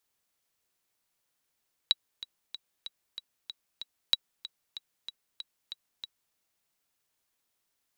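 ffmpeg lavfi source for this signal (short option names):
-f lavfi -i "aevalsrc='pow(10,(-9-16.5*gte(mod(t,7*60/189),60/189))/20)*sin(2*PI*3890*mod(t,60/189))*exp(-6.91*mod(t,60/189)/0.03)':d=4.44:s=44100"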